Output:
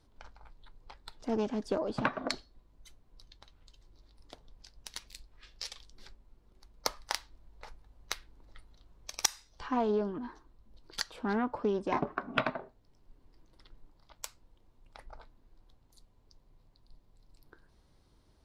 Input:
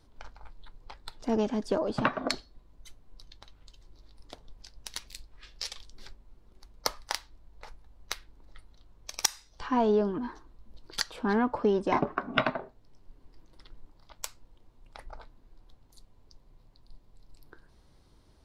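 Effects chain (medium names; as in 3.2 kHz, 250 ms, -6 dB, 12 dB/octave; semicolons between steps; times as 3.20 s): Chebyshev shaper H 7 -35 dB, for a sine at -5.5 dBFS; gain riding within 3 dB 0.5 s; loudspeaker Doppler distortion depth 0.17 ms; trim -1.5 dB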